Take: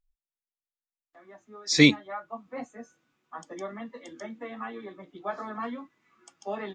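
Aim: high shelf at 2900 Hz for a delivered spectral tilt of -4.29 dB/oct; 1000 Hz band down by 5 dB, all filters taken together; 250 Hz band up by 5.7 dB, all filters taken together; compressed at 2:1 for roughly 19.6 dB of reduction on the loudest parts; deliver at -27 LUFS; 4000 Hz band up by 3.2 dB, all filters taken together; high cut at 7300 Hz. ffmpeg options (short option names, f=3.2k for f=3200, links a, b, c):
-af "lowpass=7.3k,equalizer=f=250:t=o:g=7.5,equalizer=f=1k:t=o:g=-7,highshelf=f=2.9k:g=-4,equalizer=f=4k:t=o:g=7.5,acompressor=threshold=-45dB:ratio=2,volume=15dB"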